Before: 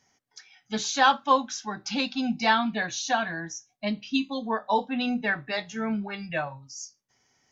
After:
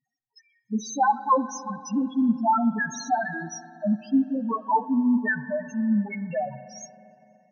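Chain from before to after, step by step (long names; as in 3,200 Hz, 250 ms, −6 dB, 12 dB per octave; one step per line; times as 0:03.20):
leveller curve on the samples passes 2
spectral peaks only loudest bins 2
spring reverb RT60 3.1 s, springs 42/57 ms, chirp 25 ms, DRR 14 dB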